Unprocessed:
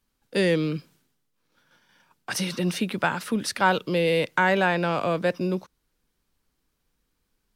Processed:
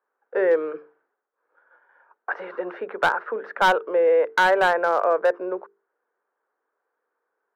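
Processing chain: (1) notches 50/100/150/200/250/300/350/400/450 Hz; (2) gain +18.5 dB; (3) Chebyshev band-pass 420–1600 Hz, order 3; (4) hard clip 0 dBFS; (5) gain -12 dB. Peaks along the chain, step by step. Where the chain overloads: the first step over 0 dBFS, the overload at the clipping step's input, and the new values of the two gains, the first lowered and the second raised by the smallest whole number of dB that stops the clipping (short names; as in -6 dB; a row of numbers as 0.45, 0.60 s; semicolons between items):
-7.0, +11.5, +9.5, 0.0, -12.0 dBFS; step 2, 9.5 dB; step 2 +8.5 dB, step 5 -2 dB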